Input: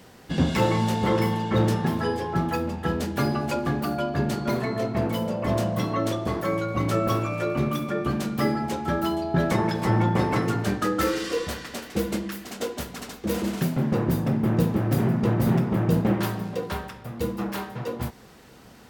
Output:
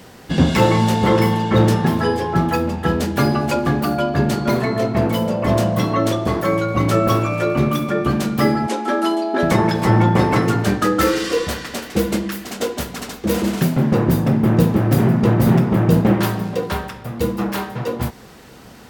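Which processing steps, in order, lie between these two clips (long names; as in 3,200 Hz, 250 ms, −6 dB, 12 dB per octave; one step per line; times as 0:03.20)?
0:08.67–0:09.43: linear-phase brick-wall band-pass 210–12,000 Hz
level +7.5 dB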